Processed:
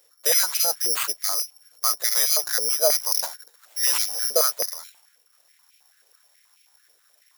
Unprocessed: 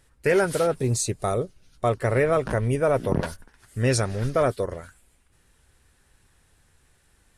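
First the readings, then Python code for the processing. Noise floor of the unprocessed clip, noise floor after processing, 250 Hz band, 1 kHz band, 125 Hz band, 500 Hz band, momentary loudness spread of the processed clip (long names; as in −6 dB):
−63 dBFS, −62 dBFS, below −20 dB, −4.5 dB, below −35 dB, −7.5 dB, 9 LU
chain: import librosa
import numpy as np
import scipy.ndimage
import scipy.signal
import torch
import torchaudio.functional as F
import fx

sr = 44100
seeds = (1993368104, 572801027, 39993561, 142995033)

y = (np.kron(x[::8], np.eye(8)[0]) * 8)[:len(x)]
y = fx.filter_held_highpass(y, sr, hz=9.3, low_hz=500.0, high_hz=2500.0)
y = y * librosa.db_to_amplitude(-9.0)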